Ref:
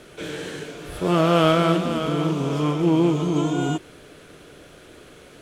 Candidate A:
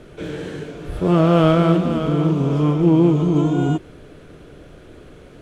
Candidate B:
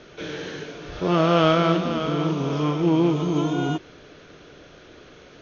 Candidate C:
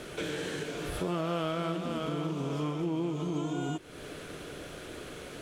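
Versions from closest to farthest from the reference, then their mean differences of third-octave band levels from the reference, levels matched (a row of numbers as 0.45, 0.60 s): B, A, C; 2.5, 5.0, 7.0 dB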